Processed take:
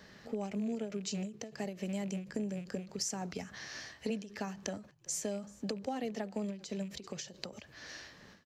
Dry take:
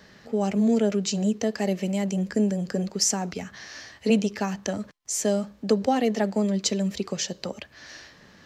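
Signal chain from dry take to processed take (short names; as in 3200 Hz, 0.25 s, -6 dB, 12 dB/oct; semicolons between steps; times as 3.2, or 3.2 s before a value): rattling part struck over -28 dBFS, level -32 dBFS; compressor 4:1, threshold -31 dBFS, peak gain reduction 13 dB; frequency-shifting echo 0.385 s, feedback 31%, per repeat -43 Hz, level -23 dB; ending taper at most 140 dB/s; gain -4 dB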